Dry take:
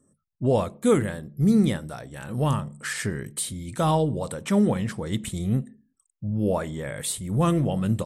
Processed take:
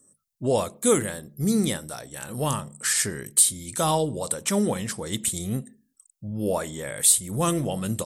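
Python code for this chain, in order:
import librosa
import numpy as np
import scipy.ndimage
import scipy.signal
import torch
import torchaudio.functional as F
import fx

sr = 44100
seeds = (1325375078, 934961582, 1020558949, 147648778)

y = fx.bass_treble(x, sr, bass_db=-6, treble_db=13)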